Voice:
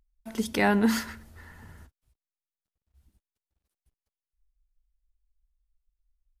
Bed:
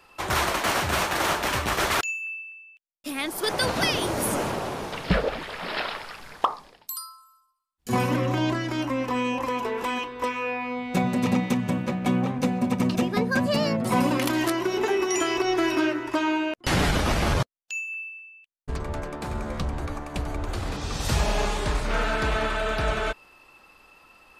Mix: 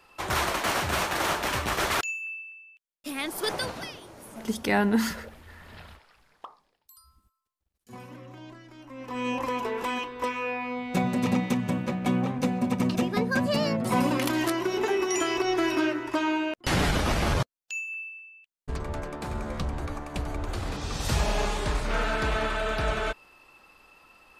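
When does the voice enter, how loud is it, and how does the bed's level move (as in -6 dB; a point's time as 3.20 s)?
4.10 s, -0.5 dB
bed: 3.50 s -2.5 dB
4.03 s -20.5 dB
8.82 s -20.5 dB
9.29 s -2 dB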